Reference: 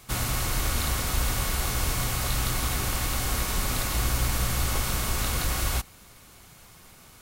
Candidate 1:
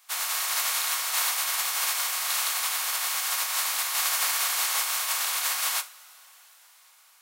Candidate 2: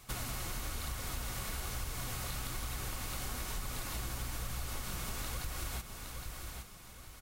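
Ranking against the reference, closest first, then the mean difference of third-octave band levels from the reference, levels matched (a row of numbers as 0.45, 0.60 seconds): 2, 1; 3.5, 13.5 decibels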